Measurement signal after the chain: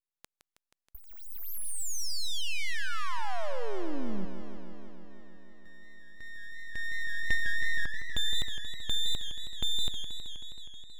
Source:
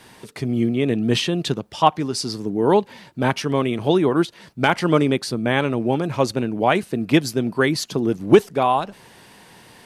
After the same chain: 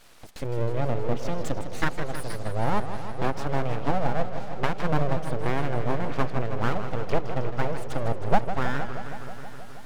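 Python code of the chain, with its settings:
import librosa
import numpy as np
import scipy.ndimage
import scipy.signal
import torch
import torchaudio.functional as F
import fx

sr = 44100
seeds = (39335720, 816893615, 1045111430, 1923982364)

y = fx.env_lowpass_down(x, sr, base_hz=660.0, full_db=-13.5)
y = np.abs(y)
y = fx.echo_warbled(y, sr, ms=159, feedback_pct=78, rate_hz=2.8, cents=176, wet_db=-10.0)
y = y * librosa.db_to_amplitude(-4.5)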